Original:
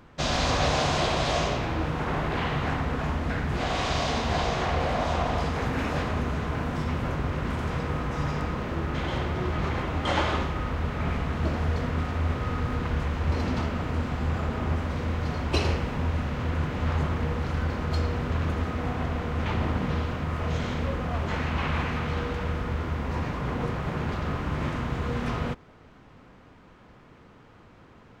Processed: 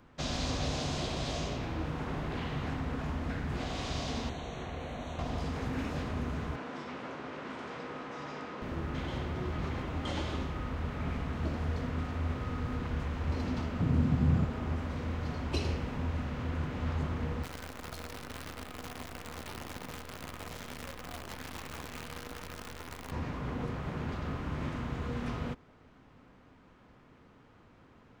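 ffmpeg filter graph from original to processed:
ffmpeg -i in.wav -filter_complex "[0:a]asettb=1/sr,asplit=3[link_01][link_02][link_03];[link_01]atrim=end=4.294[link_04];[link_02]atrim=start=4.29:end=5.19,asetpts=PTS-STARTPTS,afade=type=in:duration=0.004:curve=qsin,afade=type=out:start_time=0.896:duration=0.004:curve=qsin,acrossover=split=240|540|1600[link_05][link_06][link_07][link_08];[link_05]acompressor=threshold=-35dB:ratio=3[link_09];[link_06]acompressor=threshold=-38dB:ratio=3[link_10];[link_07]acompressor=threshold=-44dB:ratio=3[link_11];[link_08]acompressor=threshold=-43dB:ratio=3[link_12];[link_09][link_10][link_11][link_12]amix=inputs=4:normalize=0,asuperstop=centerf=5000:order=20:qfactor=4.3[link_13];[link_03]atrim=start=5.186[link_14];[link_04][link_13]acrossfade=duration=0.004:curve1=hsin:curve2=qsin[link_15];[link_15][link_14]acrossfade=duration=0.004:curve1=qsin:curve2=hsin,asettb=1/sr,asplit=3[link_16][link_17][link_18];[link_16]atrim=end=6.564[link_19];[link_17]atrim=start=6.56:end=8.62,asetpts=PTS-STARTPTS,afade=type=in:duration=0.004:curve=qsin,afade=type=out:start_time=2.056:duration=0.004:curve=qsin,highpass=320,lowpass=6300,asplit=2[link_20][link_21];[link_21]adelay=15,volume=-12.5dB[link_22];[link_20][link_22]amix=inputs=2:normalize=0,atrim=end_sample=90846[link_23];[link_18]atrim=start=8.616[link_24];[link_19][link_23]acrossfade=duration=0.004:curve1=hsin:curve2=qsin[link_25];[link_25][link_24]acrossfade=duration=0.004:curve1=qsin:curve2=hsin,asettb=1/sr,asplit=3[link_26][link_27][link_28];[link_26]atrim=end=13.804[link_29];[link_27]atrim=start=13.8:end=14.45,asetpts=PTS-STARTPTS,afade=type=in:duration=0.004:curve=qsin,afade=type=out:start_time=0.646:duration=0.004:curve=qsin,highpass=42,equalizer=frequency=150:width_type=o:width=1.8:gain=13.5[link_30];[link_28]atrim=start=14.446[link_31];[link_29][link_30]acrossfade=duration=0.004:curve1=hsin:curve2=qsin[link_32];[link_32][link_31]acrossfade=duration=0.004:curve1=qsin:curve2=hsin,asettb=1/sr,asplit=3[link_33][link_34][link_35];[link_33]atrim=end=17.434[link_36];[link_34]atrim=start=17.43:end=23.12,asetpts=PTS-STARTPTS,afade=type=in:duration=0.004:curve=qsin,afade=type=out:start_time=5.686:duration=0.004:curve=qsin,acrossover=split=320|680[link_37][link_38][link_39];[link_37]acompressor=threshold=-39dB:ratio=4[link_40];[link_38]acompressor=threshold=-42dB:ratio=4[link_41];[link_39]acompressor=threshold=-38dB:ratio=4[link_42];[link_40][link_41][link_42]amix=inputs=3:normalize=0,acrusher=bits=6:dc=4:mix=0:aa=0.000001[link_43];[link_35]atrim=start=23.116[link_44];[link_36][link_43]acrossfade=duration=0.004:curve1=hsin:curve2=qsin[link_45];[link_45][link_44]acrossfade=duration=0.004:curve1=qsin:curve2=hsin,equalizer=frequency=260:width=6.5:gain=4,acrossover=split=460|3000[link_46][link_47][link_48];[link_47]acompressor=threshold=-34dB:ratio=6[link_49];[link_46][link_49][link_48]amix=inputs=3:normalize=0,volume=-7dB" out.wav

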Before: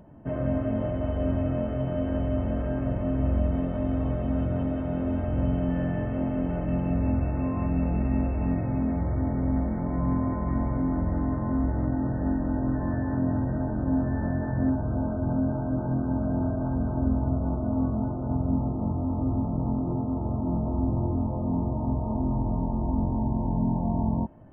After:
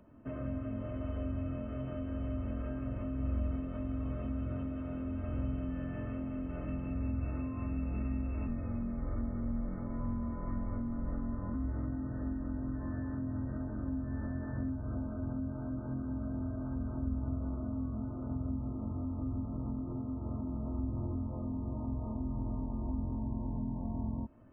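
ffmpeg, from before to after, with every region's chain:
ffmpeg -i in.wav -filter_complex "[0:a]asettb=1/sr,asplit=3[link_01][link_02][link_03];[link_01]atrim=end=8.474[link_04];[link_02]atrim=start=8.47:end=11.54,asetpts=PTS-STARTPTS,afade=type=in:duration=0.004:curve=qsin,afade=type=out:start_time=3.066:duration=0.004:curve=qsin,lowpass=2000,afreqshift=-28[link_05];[link_03]atrim=start=11.536[link_06];[link_04][link_05]acrossfade=duration=0.004:curve1=hsin:curve2=qsin[link_07];[link_07][link_06]acrossfade=duration=0.004:curve1=qsin:curve2=hsin,equalizer=frequency=160:width_type=o:width=0.33:gain=-10,equalizer=frequency=250:width_type=o:width=0.33:gain=5,equalizer=frequency=800:width_type=o:width=0.33:gain=-8,equalizer=frequency=1250:width_type=o:width=0.33:gain=9,equalizer=frequency=2500:width_type=o:width=0.33:gain=9,acrossover=split=160[link_08][link_09];[link_09]acompressor=threshold=-31dB:ratio=6[link_10];[link_08][link_10]amix=inputs=2:normalize=0,volume=-8dB" out.wav

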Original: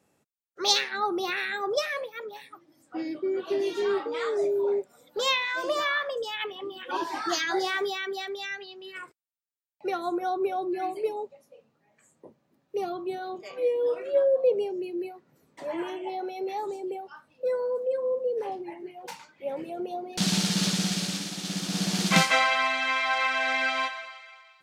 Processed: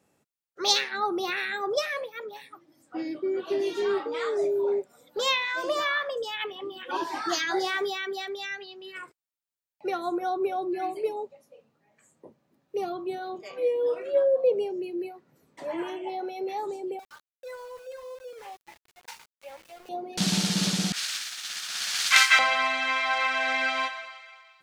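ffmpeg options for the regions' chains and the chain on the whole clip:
ffmpeg -i in.wav -filter_complex "[0:a]asettb=1/sr,asplit=3[link_01][link_02][link_03];[link_01]atrim=end=16.994[link_04];[link_02]atrim=start=16.99:end=19.89,asetpts=PTS-STARTPTS,afade=type=in:duration=0.004:curve=qsin,afade=type=out:start_time=2.896:duration=0.004:curve=qsin,highpass=1100,aeval=exprs='val(0)*gte(abs(val(0)),0.00398)':channel_layout=same[link_05];[link_03]atrim=start=19.886[link_06];[link_04][link_05]acrossfade=duration=0.004:curve1=hsin:curve2=qsin[link_07];[link_07][link_06]acrossfade=duration=0.004:curve1=qsin:curve2=hsin,asettb=1/sr,asplit=3[link_08][link_09][link_10];[link_08]atrim=end=20.924[link_11];[link_09]atrim=start=20.92:end=22.39,asetpts=PTS-STARTPTS,afade=type=in:duration=0.004:curve=qsin,afade=type=out:start_time=1.466:duration=0.004:curve=qsin,aeval=exprs='sgn(val(0))*max(abs(val(0))-0.00473,0)':channel_layout=same,highpass=frequency=1500:width_type=q:width=1.9,adynamicequalizer=threshold=0.02:dfrequency=2200:dqfactor=0.7:tfrequency=2200:tqfactor=0.7:attack=5:release=100:ratio=0.375:range=2:mode=boostabove:tftype=highshelf[link_12];[link_10]atrim=start=22.386[link_13];[link_11][link_12]acrossfade=duration=0.004:curve1=hsin:curve2=qsin[link_14];[link_14][link_13]acrossfade=duration=0.004:curve1=qsin:curve2=hsin" out.wav

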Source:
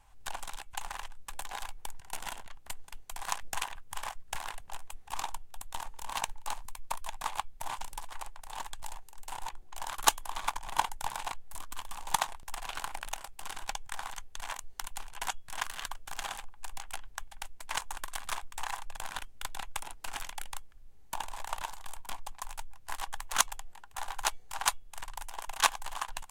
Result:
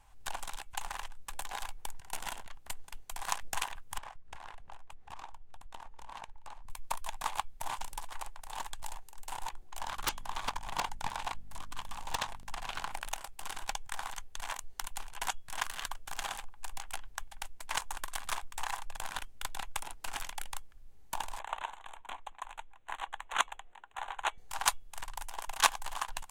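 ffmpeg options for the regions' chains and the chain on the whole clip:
ffmpeg -i in.wav -filter_complex "[0:a]asettb=1/sr,asplit=3[link_01][link_02][link_03];[link_01]atrim=end=3.984[link_04];[link_02]atrim=start=3.98:end=6.7,asetpts=PTS-STARTPTS,afade=type=in:duration=0.004:curve=qsin,afade=type=out:start_time=2.716:duration=0.004:curve=qsin,aemphasis=mode=reproduction:type=75fm,acompressor=threshold=-42dB:ratio=4:attack=3.2:release=140:knee=1:detection=peak[link_05];[link_03]atrim=start=6.696[link_06];[link_04][link_05]acrossfade=duration=0.004:curve1=hsin:curve2=qsin[link_07];[link_07][link_06]acrossfade=duration=0.004:curve1=qsin:curve2=hsin,asettb=1/sr,asplit=3[link_08][link_09][link_10];[link_08]atrim=end=9.814[link_11];[link_09]atrim=start=9.81:end=12.95,asetpts=PTS-STARTPTS,afade=type=in:duration=0.004:curve=qsin,afade=type=out:start_time=3.136:duration=0.004:curve=qsin,acrossover=split=6600[link_12][link_13];[link_13]acompressor=threshold=-53dB:ratio=4:attack=1:release=60[link_14];[link_12][link_14]amix=inputs=2:normalize=0,aeval=exprs='val(0)+0.00178*(sin(2*PI*50*n/s)+sin(2*PI*2*50*n/s)/2+sin(2*PI*3*50*n/s)/3+sin(2*PI*4*50*n/s)/4+sin(2*PI*5*50*n/s)/5)':channel_layout=same,aeval=exprs='0.0708*(abs(mod(val(0)/0.0708+3,4)-2)-1)':channel_layout=same[link_15];[link_10]atrim=start=12.946[link_16];[link_11][link_15]acrossfade=duration=0.004:curve1=hsin:curve2=qsin[link_17];[link_17][link_16]acrossfade=duration=0.004:curve1=qsin:curve2=hsin,asettb=1/sr,asplit=3[link_18][link_19][link_20];[link_18]atrim=end=21.394[link_21];[link_19]atrim=start=21.39:end=24.38,asetpts=PTS-STARTPTS,afade=type=in:duration=0.004:curve=qsin,afade=type=out:start_time=2.986:duration=0.004:curve=qsin,asuperstop=centerf=5000:order=4:qfactor=1.6,acrossover=split=270 6100:gain=0.251 1 0.0891[link_22][link_23][link_24];[link_22][link_23][link_24]amix=inputs=3:normalize=0[link_25];[link_20]atrim=start=24.376[link_26];[link_21][link_25]acrossfade=duration=0.004:curve1=hsin:curve2=qsin[link_27];[link_27][link_26]acrossfade=duration=0.004:curve1=qsin:curve2=hsin" out.wav

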